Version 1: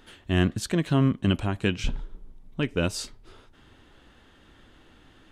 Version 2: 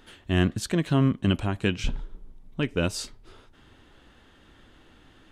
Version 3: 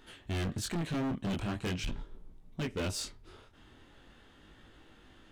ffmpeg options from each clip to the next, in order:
-af anull
-af "flanger=delay=18:depth=7.7:speed=0.42,asoftclip=type=hard:threshold=0.0282"

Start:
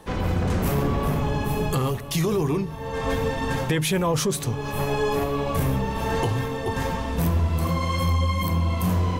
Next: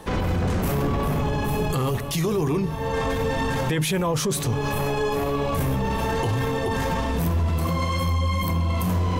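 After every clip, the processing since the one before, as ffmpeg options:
-af "alimiter=limit=0.0794:level=0:latency=1:release=16,volume=1.88"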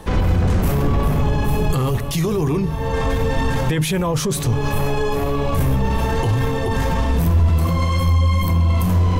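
-af "lowshelf=f=90:g=11,volume=1.26"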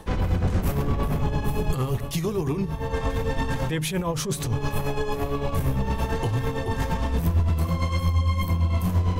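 -af "tremolo=f=8.8:d=0.57,volume=0.631"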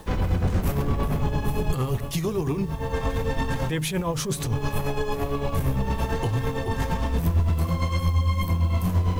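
-af "acrusher=bits=8:mix=0:aa=0.000001"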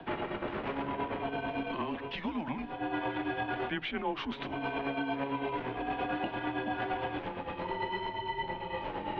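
-filter_complex "[0:a]highpass=f=260:t=q:w=0.5412,highpass=f=260:t=q:w=1.307,lowpass=f=3400:t=q:w=0.5176,lowpass=f=3400:t=q:w=0.7071,lowpass=f=3400:t=q:w=1.932,afreqshift=-150,acrossover=split=240|710[s0][s1][s2];[s0]acompressor=threshold=0.00398:ratio=4[s3];[s1]acompressor=threshold=0.0178:ratio=4[s4];[s2]acompressor=threshold=0.02:ratio=4[s5];[s3][s4][s5]amix=inputs=3:normalize=0"

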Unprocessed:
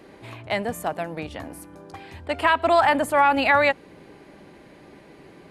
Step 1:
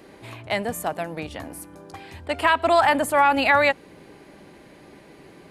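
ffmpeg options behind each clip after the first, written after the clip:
-af "highshelf=f=5400:g=6"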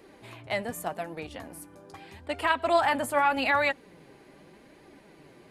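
-af "flanger=delay=2:depth=6.8:regen=51:speed=0.83:shape=triangular,volume=0.794"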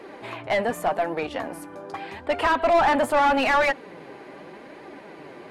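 -filter_complex "[0:a]asplit=2[s0][s1];[s1]highpass=f=720:p=1,volume=15.8,asoftclip=type=tanh:threshold=0.335[s2];[s0][s2]amix=inputs=2:normalize=0,lowpass=f=1100:p=1,volume=0.501"

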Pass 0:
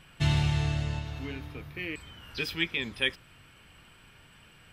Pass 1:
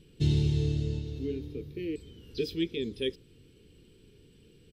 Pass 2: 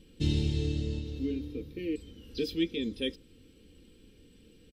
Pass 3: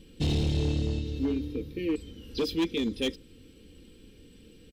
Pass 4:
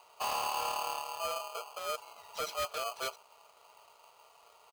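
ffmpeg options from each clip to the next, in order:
-af "firequalizer=gain_entry='entry(140,0);entry(440,10);entry(630,-18);entry(1200,-23);entry(3800,-3);entry(9000,-8)':delay=0.05:min_phase=1"
-af "aecho=1:1:3.8:0.59"
-af "volume=22.4,asoftclip=hard,volume=0.0447,volume=1.68"
-af "aeval=exprs='val(0)*sgn(sin(2*PI*920*n/s))':c=same,volume=0.398"

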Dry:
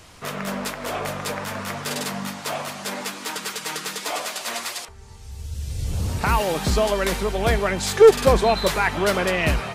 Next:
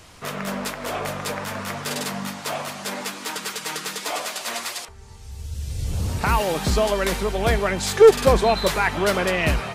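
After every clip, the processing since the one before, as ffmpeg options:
-af anull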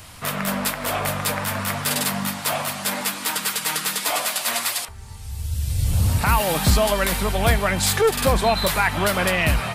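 -af "highshelf=f=7000:g=10.5,alimiter=limit=0.299:level=0:latency=1:release=191,equalizer=f=100:t=o:w=0.67:g=4,equalizer=f=400:t=o:w=0.67:g=-8,equalizer=f=6300:t=o:w=0.67:g=-6,volume=1.58"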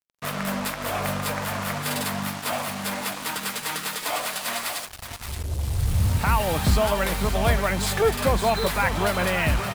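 -af "highshelf=f=3600:g=-6.5,aecho=1:1:573:0.335,acrusher=bits=4:mix=0:aa=0.5,volume=0.75"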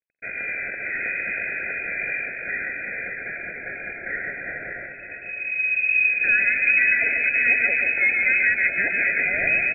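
-filter_complex "[0:a]asuperstop=centerf=1500:order=8:qfactor=1.8,asplit=2[s0][s1];[s1]aecho=0:1:140|336|610.4|994.6|1532:0.631|0.398|0.251|0.158|0.1[s2];[s0][s2]amix=inputs=2:normalize=0,lowpass=f=2200:t=q:w=0.5098,lowpass=f=2200:t=q:w=0.6013,lowpass=f=2200:t=q:w=0.9,lowpass=f=2200:t=q:w=2.563,afreqshift=-2600"

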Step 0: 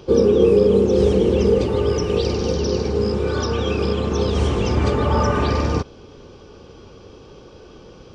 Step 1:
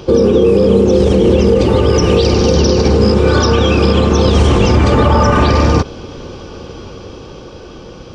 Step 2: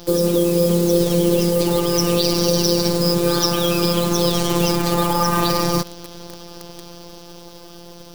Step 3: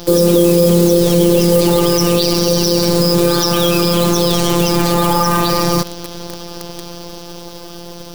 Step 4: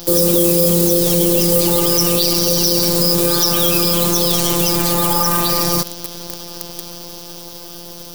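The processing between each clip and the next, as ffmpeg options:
-af "bandreject=f=420:w=12,dynaudnorm=f=340:g=9:m=1.68,alimiter=level_in=3.98:limit=0.891:release=50:level=0:latency=1,volume=0.891"
-af "afftfilt=real='hypot(re,im)*cos(PI*b)':imag='0':win_size=1024:overlap=0.75,acrusher=bits=6:dc=4:mix=0:aa=0.000001,aexciter=amount=2.6:drive=6.1:freq=3800,volume=0.631"
-af "alimiter=limit=0.355:level=0:latency=1:release=18,volume=2.51"
-af "crystalizer=i=2:c=0,volume=0.562"

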